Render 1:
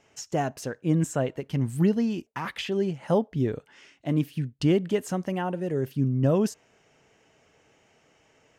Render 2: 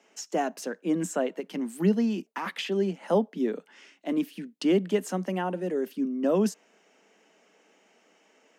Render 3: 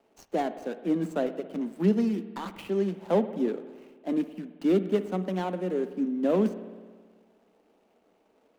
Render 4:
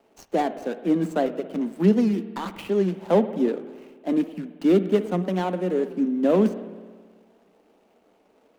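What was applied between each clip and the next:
Butterworth high-pass 180 Hz 96 dB per octave
running median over 25 samples; on a send at −12 dB: convolution reverb RT60 1.6 s, pre-delay 54 ms
wow of a warped record 78 rpm, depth 100 cents; level +5 dB

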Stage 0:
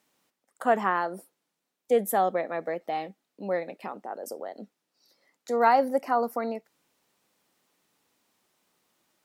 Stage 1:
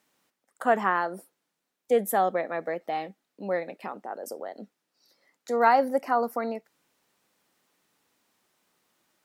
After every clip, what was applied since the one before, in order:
parametric band 1,600 Hz +2.5 dB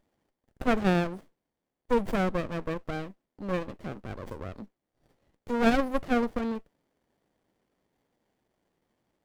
windowed peak hold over 33 samples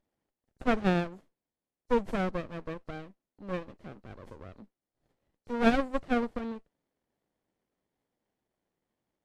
hearing-aid frequency compression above 3,900 Hz 1.5 to 1
expander for the loud parts 1.5 to 1, over −35 dBFS

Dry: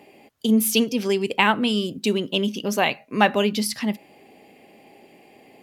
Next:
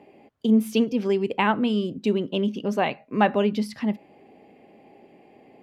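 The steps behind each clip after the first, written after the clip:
low-pass filter 1,100 Hz 6 dB per octave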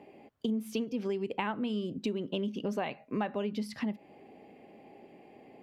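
downward compressor 6 to 1, threshold −28 dBFS, peak gain reduction 13.5 dB
level −2 dB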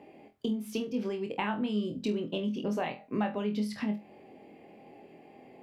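flutter between parallel walls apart 4.1 metres, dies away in 0.23 s

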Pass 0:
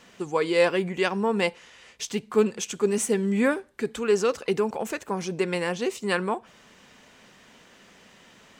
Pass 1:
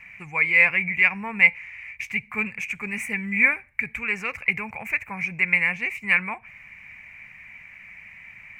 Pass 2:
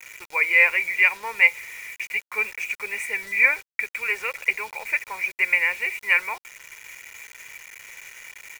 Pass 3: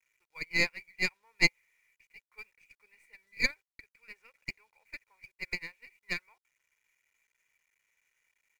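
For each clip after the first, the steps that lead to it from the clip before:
drawn EQ curve 110 Hz 0 dB, 390 Hz −28 dB, 790 Hz −12 dB, 1,500 Hz −10 dB, 2,300 Hz +15 dB, 3,300 Hz −25 dB, 8,100 Hz −20 dB, 13,000 Hz −11 dB; level +7.5 dB
high-pass filter 370 Hz 24 dB per octave; bit reduction 7 bits; comb filter 2.1 ms, depth 43%
stylus tracing distortion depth 0.1 ms; expander for the loud parts 2.5 to 1, over −28 dBFS; level −7.5 dB

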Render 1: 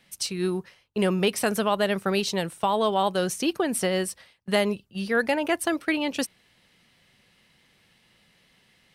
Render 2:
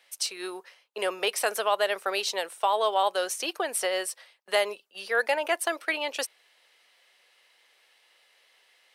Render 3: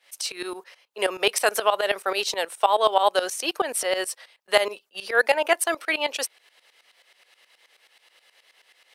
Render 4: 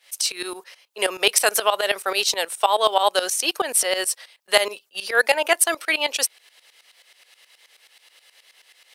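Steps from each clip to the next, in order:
high-pass filter 480 Hz 24 dB per octave
shaped tremolo saw up 9.4 Hz, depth 85%; level +8 dB
high-shelf EQ 2,900 Hz +9 dB

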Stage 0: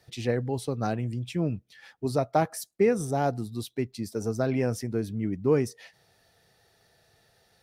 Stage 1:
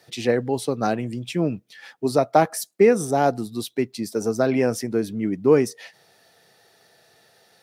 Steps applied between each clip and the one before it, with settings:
high-pass filter 200 Hz 12 dB per octave
level +7.5 dB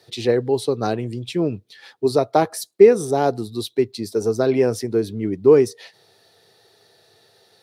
graphic EQ with 15 bands 100 Hz +11 dB, 400 Hz +10 dB, 1,000 Hz +4 dB, 4,000 Hz +9 dB, 10,000 Hz +3 dB
level −4 dB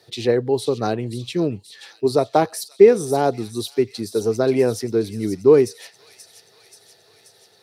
delay with a high-pass on its return 531 ms, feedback 66%, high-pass 3,800 Hz, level −8 dB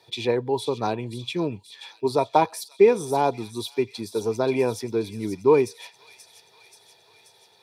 hollow resonant body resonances 950/2,400/3,400 Hz, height 16 dB, ringing for 30 ms
level −5.5 dB

